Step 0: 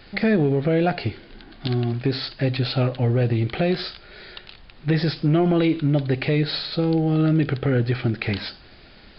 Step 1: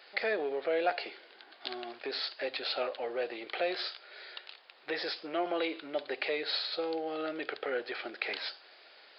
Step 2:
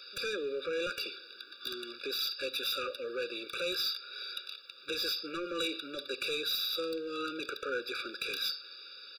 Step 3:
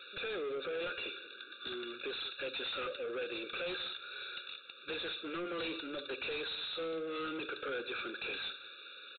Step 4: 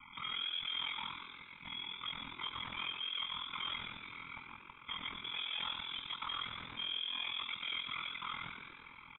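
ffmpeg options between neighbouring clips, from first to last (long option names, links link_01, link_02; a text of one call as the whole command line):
ffmpeg -i in.wav -af "highpass=frequency=470:width=0.5412,highpass=frequency=470:width=1.3066,volume=-5.5dB" out.wav
ffmpeg -i in.wav -af "firequalizer=gain_entry='entry(810,0);entry(1400,6);entry(2200,2);entry(3400,13);entry(5300,15)':delay=0.05:min_phase=1,asoftclip=type=tanh:threshold=-27dB,afftfilt=real='re*eq(mod(floor(b*sr/1024/570),2),0)':imag='im*eq(mod(floor(b*sr/1024/570),2),0)':win_size=1024:overlap=0.75" out.wav
ffmpeg -i in.wav -af "aresample=8000,asoftclip=type=tanh:threshold=-38.5dB,aresample=44100,aecho=1:1:186:0.133,volume=3dB" out.wav
ffmpeg -i in.wav -filter_complex "[0:a]aeval=exprs='val(0)*sin(2*PI*21*n/s)':channel_layout=same,lowpass=frequency=3100:width_type=q:width=0.5098,lowpass=frequency=3100:width_type=q:width=0.6013,lowpass=frequency=3100:width_type=q:width=0.9,lowpass=frequency=3100:width_type=q:width=2.563,afreqshift=-3700,asplit=7[link_01][link_02][link_03][link_04][link_05][link_06][link_07];[link_02]adelay=118,afreqshift=96,volume=-7dB[link_08];[link_03]adelay=236,afreqshift=192,volume=-12.5dB[link_09];[link_04]adelay=354,afreqshift=288,volume=-18dB[link_10];[link_05]adelay=472,afreqshift=384,volume=-23.5dB[link_11];[link_06]adelay=590,afreqshift=480,volume=-29.1dB[link_12];[link_07]adelay=708,afreqshift=576,volume=-34.6dB[link_13];[link_01][link_08][link_09][link_10][link_11][link_12][link_13]amix=inputs=7:normalize=0,volume=1dB" out.wav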